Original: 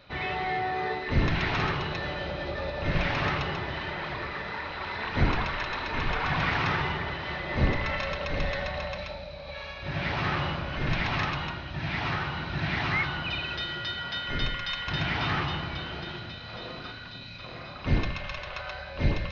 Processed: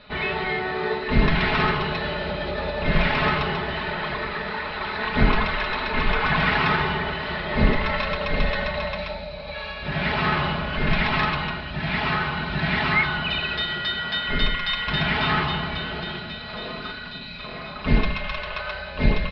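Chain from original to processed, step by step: steep low-pass 5 kHz 48 dB/octave; comb 4.7 ms; trim +5 dB

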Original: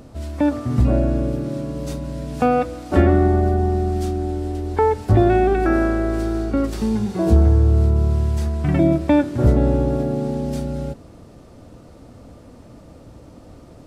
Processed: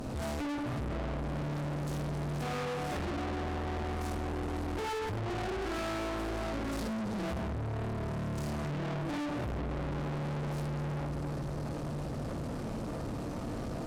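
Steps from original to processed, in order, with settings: reverberation RT60 0.65 s, pre-delay 37 ms, DRR -3 dB; compression 4:1, threshold -25 dBFS, peak gain reduction 17 dB; filtered feedback delay 361 ms, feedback 79%, level -18 dB; valve stage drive 41 dB, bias 0.55; trim +7 dB

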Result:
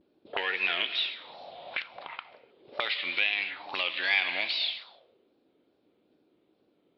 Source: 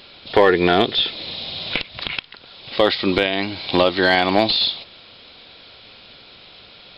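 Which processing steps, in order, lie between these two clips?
gate -42 dBFS, range -8 dB; wow and flutter 130 cents; gated-style reverb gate 330 ms flat, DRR 9.5 dB; auto-wah 300–2500 Hz, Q 3.9, up, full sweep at -18 dBFS

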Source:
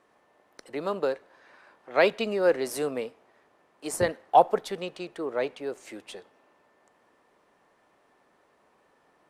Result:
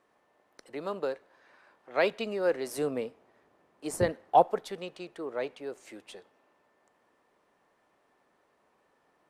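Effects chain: 2.78–4.43 s: bass shelf 440 Hz +7.5 dB; trim -5 dB

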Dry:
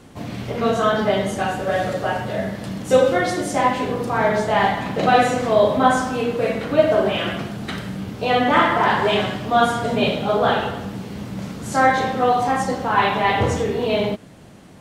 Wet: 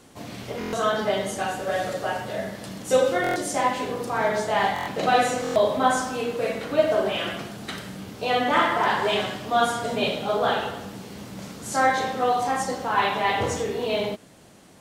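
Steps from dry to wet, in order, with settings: tone controls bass -6 dB, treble +6 dB; buffer glitch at 0.59/3.22/4.74/5.42 s, samples 1024, times 5; trim -4.5 dB

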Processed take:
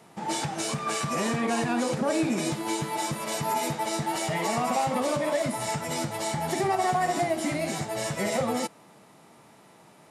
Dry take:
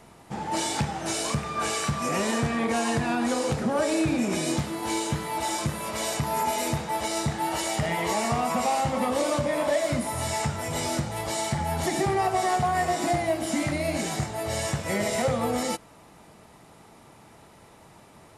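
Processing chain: high-pass 130 Hz 24 dB/octave; time stretch by phase-locked vocoder 0.55×

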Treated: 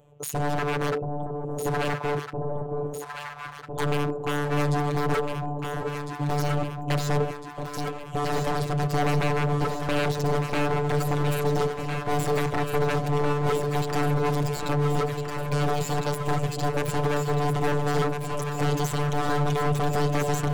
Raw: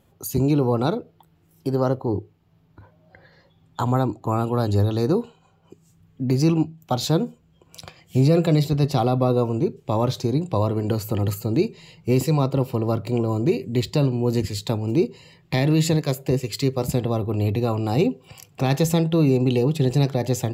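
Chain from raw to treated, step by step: local Wiener filter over 9 samples; high-order bell 5 kHz +15.5 dB 2.5 oct; robot voice 146 Hz; in parallel at 0 dB: compression 4:1, threshold -29 dBFS, peak gain reduction 16.5 dB; on the sum: peak limiter -4 dBFS, peak gain reduction 11.5 dB; graphic EQ 125/250/500/1000/2000/4000 Hz +7/-5/+12/+5/-6/-9 dB; wavefolder -15 dBFS; echo whose repeats swap between lows and highs 677 ms, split 840 Hz, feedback 80%, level -4 dB; trim -6 dB

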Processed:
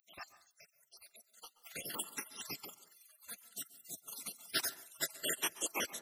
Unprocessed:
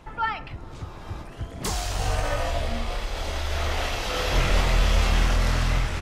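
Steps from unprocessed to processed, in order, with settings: random holes in the spectrogram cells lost 73%; pre-emphasis filter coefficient 0.8; spectral gate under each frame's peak -25 dB weak; reverberation RT60 0.40 s, pre-delay 117 ms, DRR 16 dB; trim +15 dB

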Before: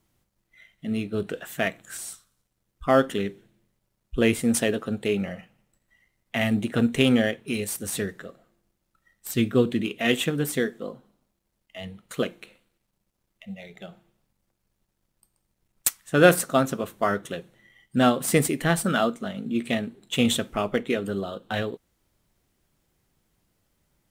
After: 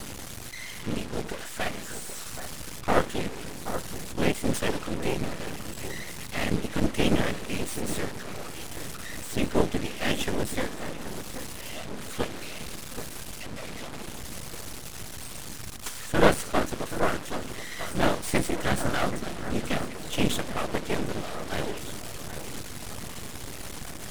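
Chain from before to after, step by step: one-bit delta coder 64 kbps, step -28.5 dBFS; whisper effect; half-wave rectifier; echo whose repeats swap between lows and highs 778 ms, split 1.9 kHz, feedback 57%, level -10 dB

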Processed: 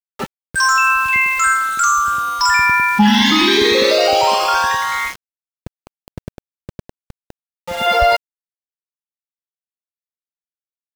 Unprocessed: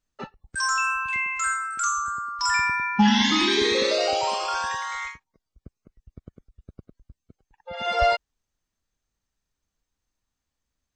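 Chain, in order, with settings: peaking EQ 6.9 kHz -4 dB 0.74 oct; in parallel at -0.5 dB: compressor with a negative ratio -25 dBFS; on the sum: small samples zeroed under -31 dBFS; trim +5 dB

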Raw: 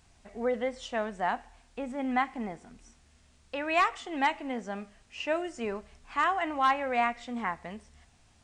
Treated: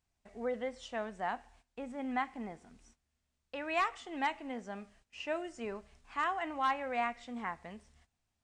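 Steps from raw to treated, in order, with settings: gate -56 dBFS, range -15 dB; trim -6.5 dB

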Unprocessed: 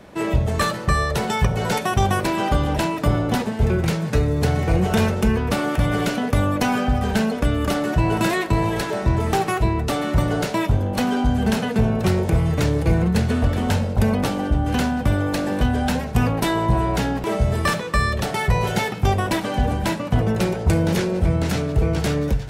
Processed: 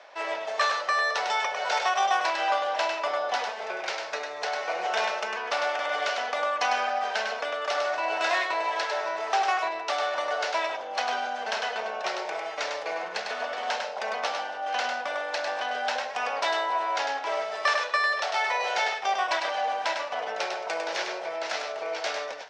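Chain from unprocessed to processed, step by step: delay 101 ms -5 dB; reverse; upward compressor, threshold -26 dBFS; reverse; elliptic band-pass 630–5700 Hz, stop band 80 dB; trim -1.5 dB

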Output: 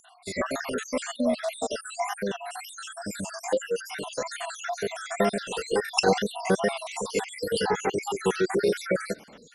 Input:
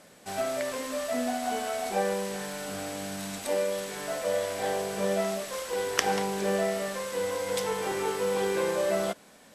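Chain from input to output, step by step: random holes in the spectrogram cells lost 68%; wow and flutter 79 cents; formant shift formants -2 st; trim +7.5 dB

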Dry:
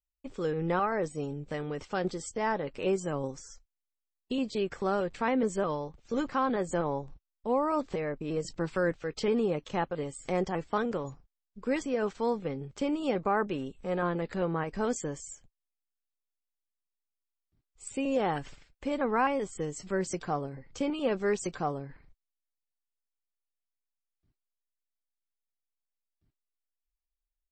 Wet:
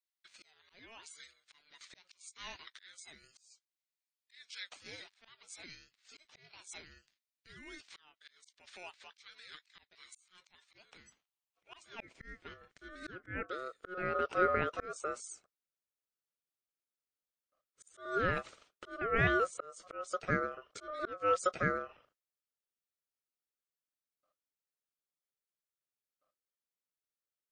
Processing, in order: high-pass sweep 3 kHz -> 350 Hz, 10.58–14.18 s; slow attack 426 ms; ring modulator 910 Hz

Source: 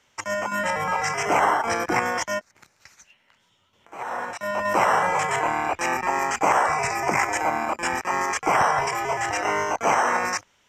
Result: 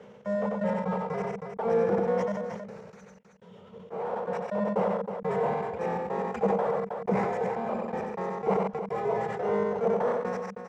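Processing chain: power-law waveshaper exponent 0.5; trance gate "x.xx.x.x.x...xx" 123 bpm -60 dB; two resonant band-passes 300 Hz, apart 1.2 oct; multi-tap echo 92/135/318 ms -8/-19/-13.5 dB; decay stretcher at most 31 dB/s; trim +2 dB

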